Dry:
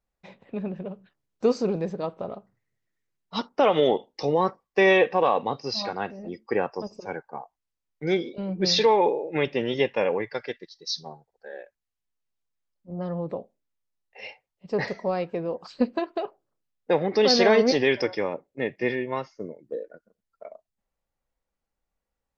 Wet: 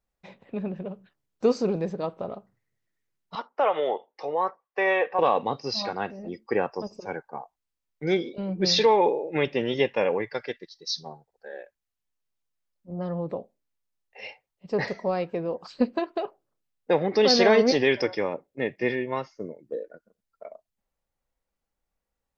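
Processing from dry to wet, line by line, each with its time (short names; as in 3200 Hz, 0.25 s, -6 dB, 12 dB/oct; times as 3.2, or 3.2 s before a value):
3.35–5.19 three-band isolator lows -20 dB, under 490 Hz, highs -16 dB, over 2300 Hz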